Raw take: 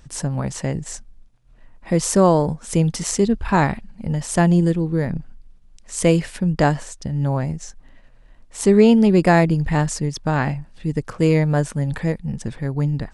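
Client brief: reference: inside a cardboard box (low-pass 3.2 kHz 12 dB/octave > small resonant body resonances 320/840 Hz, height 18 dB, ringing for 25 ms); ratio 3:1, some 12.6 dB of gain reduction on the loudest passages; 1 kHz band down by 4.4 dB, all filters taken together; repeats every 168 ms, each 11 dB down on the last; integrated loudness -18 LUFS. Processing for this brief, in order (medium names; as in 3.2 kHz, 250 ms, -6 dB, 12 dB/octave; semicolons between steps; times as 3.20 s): peaking EQ 1 kHz -6 dB; compression 3:1, threshold -27 dBFS; low-pass 3.2 kHz 12 dB/octave; feedback delay 168 ms, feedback 28%, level -11 dB; small resonant body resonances 320/840 Hz, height 18 dB, ringing for 25 ms; trim +1.5 dB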